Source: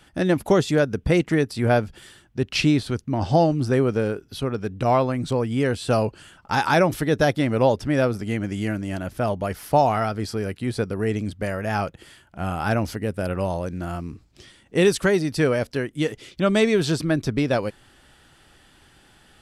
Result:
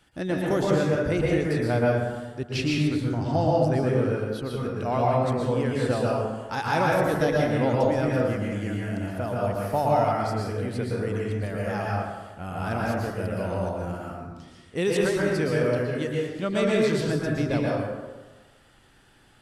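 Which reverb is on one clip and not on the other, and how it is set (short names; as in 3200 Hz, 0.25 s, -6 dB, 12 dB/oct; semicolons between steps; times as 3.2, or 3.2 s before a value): plate-style reverb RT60 1.3 s, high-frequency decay 0.45×, pre-delay 0.105 s, DRR -4 dB; gain -8.5 dB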